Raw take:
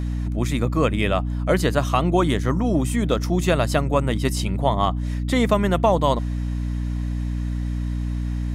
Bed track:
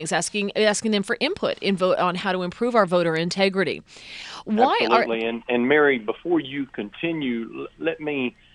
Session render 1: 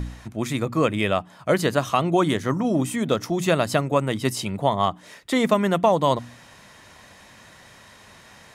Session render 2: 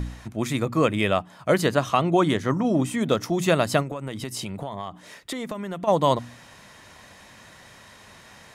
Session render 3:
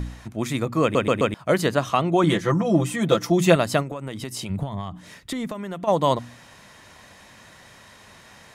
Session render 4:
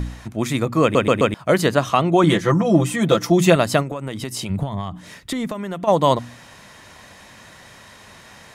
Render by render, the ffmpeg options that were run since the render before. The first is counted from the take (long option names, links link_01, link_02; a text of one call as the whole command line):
ffmpeg -i in.wav -af "bandreject=frequency=60:width_type=h:width=4,bandreject=frequency=120:width_type=h:width=4,bandreject=frequency=180:width_type=h:width=4,bandreject=frequency=240:width_type=h:width=4,bandreject=frequency=300:width_type=h:width=4" out.wav
ffmpeg -i in.wav -filter_complex "[0:a]asettb=1/sr,asplit=3[link_01][link_02][link_03];[link_01]atrim=end=1.684[link_04];[link_02]atrim=start=1.68:end=3.01,asetpts=PTS-STARTPTS,afade=type=in:duration=0.004:curve=qsin,afade=type=out:start_time=1.326:duration=0.004:curve=qsin,highshelf=frequency=9000:gain=-8[link_05];[link_03]atrim=start=3.006[link_06];[link_04][link_05]acrossfade=duration=0.004:curve1=hsin:curve2=qsin[link_07];[link_07][link_06]acrossfade=duration=0.004:curve1=qsin:curve2=hsin,asplit=3[link_08][link_09][link_10];[link_08]afade=type=out:start_time=3.82:duration=0.02[link_11];[link_09]acompressor=threshold=-27dB:ratio=16:attack=3.2:release=140:knee=1:detection=peak,afade=type=in:start_time=3.82:duration=0.02,afade=type=out:start_time=5.87:duration=0.02[link_12];[link_10]afade=type=in:start_time=5.87:duration=0.02[link_13];[link_11][link_12][link_13]amix=inputs=3:normalize=0" out.wav
ffmpeg -i in.wav -filter_complex "[0:a]asettb=1/sr,asplit=3[link_01][link_02][link_03];[link_01]atrim=end=2.234[link_04];[link_02]atrim=start=2.23:end=3.56,asetpts=PTS-STARTPTS,afade=type=in:duration=0.004:curve=qsin,afade=type=out:start_time=1.326:duration=0.004:curve=qsin,aecho=1:1:5.9:0.95,atrim=end_sample=58653[link_05];[link_03]atrim=start=3.556[link_06];[link_04][link_05]acrossfade=duration=0.004:curve1=hsin:curve2=qsin[link_07];[link_07][link_06]acrossfade=duration=0.004:curve1=qsin:curve2=hsin,asplit=3[link_08][link_09][link_10];[link_08]afade=type=out:start_time=4.49:duration=0.02[link_11];[link_09]asubboost=boost=4:cutoff=230,afade=type=in:start_time=4.49:duration=0.02,afade=type=out:start_time=5.47:duration=0.02[link_12];[link_10]afade=type=in:start_time=5.47:duration=0.02[link_13];[link_11][link_12][link_13]amix=inputs=3:normalize=0,asplit=5[link_14][link_15][link_16][link_17][link_18];[link_14]atrim=end=0.952[link_19];[link_15]atrim=start=0.818:end=0.952[link_20];[link_16]atrim=start=0.818:end=0.952[link_21];[link_17]atrim=start=0.818:end=0.952[link_22];[link_18]atrim=start=1.338[link_23];[link_19][link_20]acrossfade=duration=0.004:curve1=hsin:curve2=hsin[link_24];[link_24][link_21]acrossfade=duration=0.004:curve1=hsin:curve2=hsin[link_25];[link_25][link_22]acrossfade=duration=0.004:curve1=hsin:curve2=hsin[link_26];[link_26][link_23]acrossfade=duration=0.004:curve1=hsin:curve2=hsin" out.wav
ffmpeg -i in.wav -af "volume=4dB,alimiter=limit=-3dB:level=0:latency=1" out.wav